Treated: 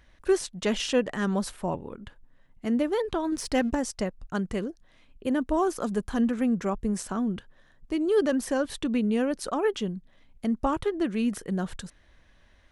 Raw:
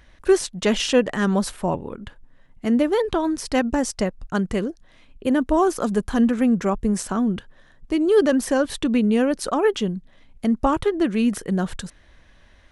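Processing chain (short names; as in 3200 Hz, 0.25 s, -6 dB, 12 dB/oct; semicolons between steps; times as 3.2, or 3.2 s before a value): 3.32–3.75 sample leveller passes 1; gain -6.5 dB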